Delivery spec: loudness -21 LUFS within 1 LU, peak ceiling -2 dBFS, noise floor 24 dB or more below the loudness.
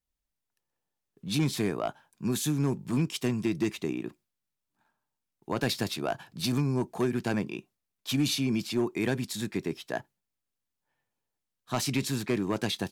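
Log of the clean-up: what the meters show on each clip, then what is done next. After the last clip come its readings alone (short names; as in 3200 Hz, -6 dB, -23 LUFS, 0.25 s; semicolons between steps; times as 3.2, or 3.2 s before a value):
clipped 0.5%; flat tops at -19.5 dBFS; loudness -30.5 LUFS; peak -19.5 dBFS; loudness target -21.0 LUFS
-> clip repair -19.5 dBFS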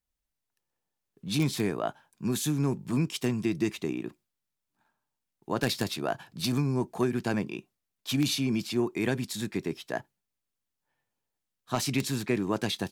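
clipped 0.0%; loudness -30.5 LUFS; peak -10.5 dBFS; loudness target -21.0 LUFS
-> gain +9.5 dB; limiter -2 dBFS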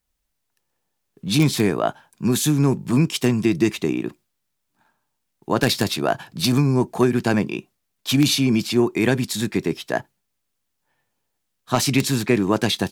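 loudness -21.0 LUFS; peak -2.0 dBFS; noise floor -76 dBFS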